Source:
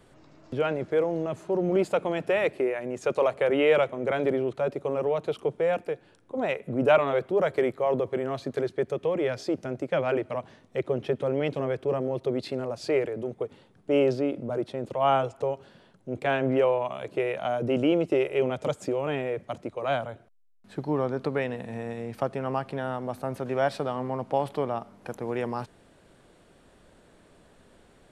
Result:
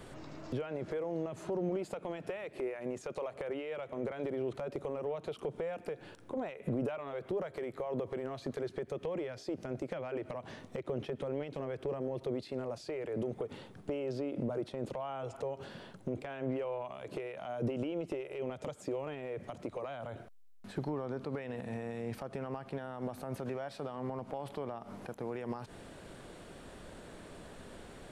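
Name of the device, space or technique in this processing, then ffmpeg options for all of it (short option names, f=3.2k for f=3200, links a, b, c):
de-esser from a sidechain: -filter_complex "[0:a]asplit=2[a][b];[b]highpass=f=4.2k:p=1,apad=whole_len=1239912[c];[a][c]sidechaincompress=threshold=-58dB:ratio=6:attack=0.71:release=80,volume=7dB"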